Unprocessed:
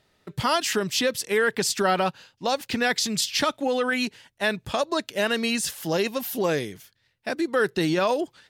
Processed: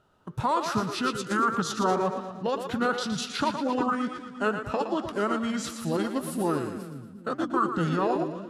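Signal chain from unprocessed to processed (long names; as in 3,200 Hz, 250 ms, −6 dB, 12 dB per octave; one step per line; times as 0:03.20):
high shelf with overshoot 2,000 Hz −6.5 dB, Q 3
in parallel at +1.5 dB: downward compressor, threshold −30 dBFS, peak gain reduction 13.5 dB
on the sum: echo with a time of its own for lows and highs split 330 Hz, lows 382 ms, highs 116 ms, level −8 dB
flanger 1.9 Hz, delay 4.9 ms, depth 4.6 ms, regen +88%
formants moved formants −4 semitones
level −2 dB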